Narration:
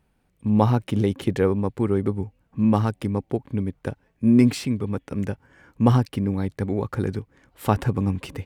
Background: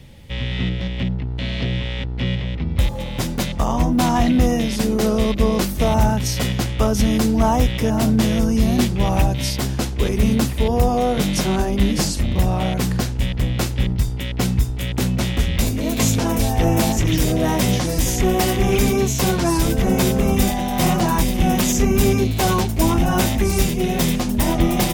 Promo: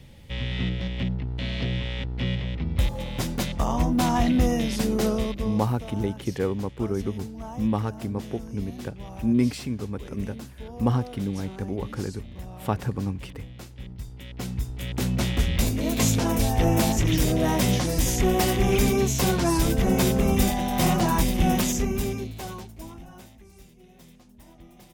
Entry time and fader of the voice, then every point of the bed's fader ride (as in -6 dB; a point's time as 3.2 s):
5.00 s, -5.5 dB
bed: 5.07 s -5 dB
5.83 s -21 dB
13.73 s -21 dB
15.2 s -4 dB
21.53 s -4 dB
23.44 s -32.5 dB